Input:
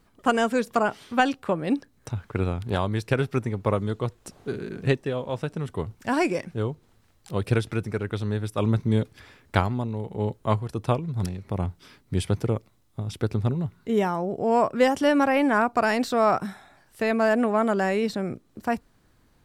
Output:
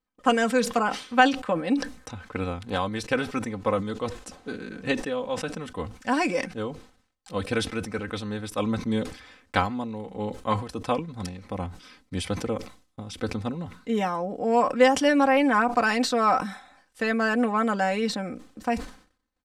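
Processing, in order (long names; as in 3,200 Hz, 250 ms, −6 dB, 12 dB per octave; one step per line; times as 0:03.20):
low-pass filter 9,000 Hz 12 dB per octave
noise gate −57 dBFS, range −23 dB
low-shelf EQ 460 Hz −6 dB
comb filter 3.9 ms, depth 73%
level that may fall only so fast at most 120 dB per second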